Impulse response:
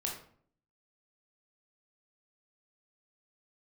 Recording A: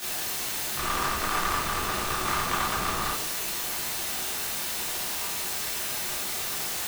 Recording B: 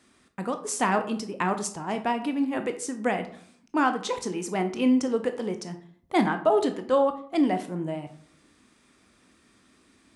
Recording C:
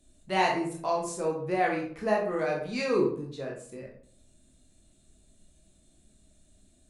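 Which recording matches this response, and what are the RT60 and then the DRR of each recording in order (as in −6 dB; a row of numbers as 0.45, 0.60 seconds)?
C; 0.55, 0.55, 0.55 seconds; −9.5, 7.5, −1.5 decibels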